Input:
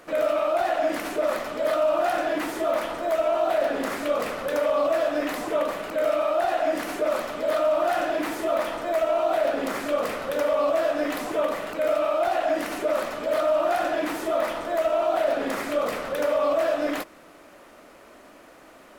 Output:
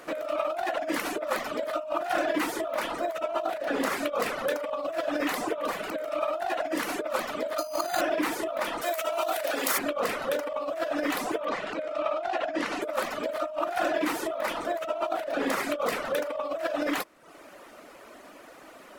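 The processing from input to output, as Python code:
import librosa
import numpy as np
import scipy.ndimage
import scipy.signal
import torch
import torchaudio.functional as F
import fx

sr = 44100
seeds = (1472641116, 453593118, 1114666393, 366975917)

y = fx.resample_bad(x, sr, factor=8, down='none', up='hold', at=(7.58, 8.01))
y = fx.riaa(y, sr, side='recording', at=(8.81, 9.77), fade=0.02)
y = fx.lowpass(y, sr, hz=5600.0, slope=12, at=(11.45, 12.82))
y = fx.dereverb_blind(y, sr, rt60_s=0.66)
y = fx.low_shelf(y, sr, hz=140.0, db=-8.0)
y = fx.over_compress(y, sr, threshold_db=-28.0, ratio=-0.5)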